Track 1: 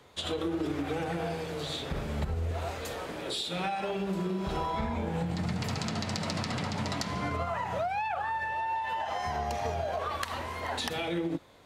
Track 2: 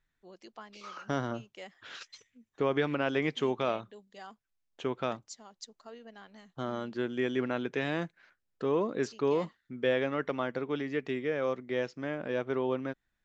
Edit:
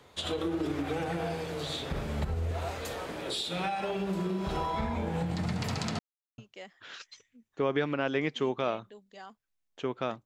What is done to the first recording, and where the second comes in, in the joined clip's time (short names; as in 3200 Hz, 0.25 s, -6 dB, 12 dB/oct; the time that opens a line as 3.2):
track 1
5.99–6.38 mute
6.38 switch to track 2 from 1.39 s